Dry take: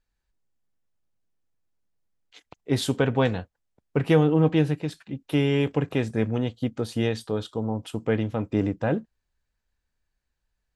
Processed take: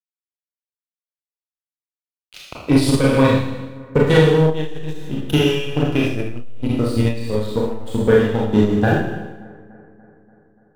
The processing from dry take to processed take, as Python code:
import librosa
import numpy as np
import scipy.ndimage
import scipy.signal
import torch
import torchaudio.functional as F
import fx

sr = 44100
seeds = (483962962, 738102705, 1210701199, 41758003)

p1 = fx.spec_ripple(x, sr, per_octave=0.99, drift_hz=-0.26, depth_db=9)
p2 = fx.transient(p1, sr, attack_db=12, sustain_db=0)
p3 = fx.high_shelf(p2, sr, hz=2100.0, db=8.0)
p4 = fx.notch(p3, sr, hz=2100.0, q=13.0)
p5 = fx.leveller(p4, sr, passes=2)
p6 = np.where(np.abs(p5) >= 10.0 ** (-36.5 / 20.0), p5, 0.0)
p7 = fx.low_shelf(p6, sr, hz=120.0, db=10.5)
p8 = p7 + fx.echo_bbd(p7, sr, ms=290, stages=4096, feedback_pct=63, wet_db=-23.0, dry=0)
p9 = fx.rev_schroeder(p8, sr, rt60_s=0.92, comb_ms=26, drr_db=-4.5)
p10 = fx.transformer_sat(p9, sr, knee_hz=130.0)
y = p10 * 10.0 ** (-11.0 / 20.0)